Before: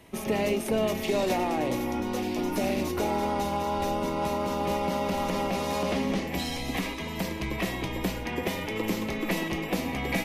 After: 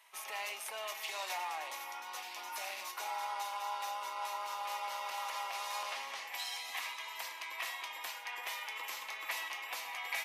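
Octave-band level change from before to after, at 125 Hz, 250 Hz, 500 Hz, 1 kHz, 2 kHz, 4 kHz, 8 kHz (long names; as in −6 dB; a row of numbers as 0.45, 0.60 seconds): below −40 dB, below −40 dB, −22.0 dB, −8.0 dB, −5.5 dB, −5.0 dB, −4.5 dB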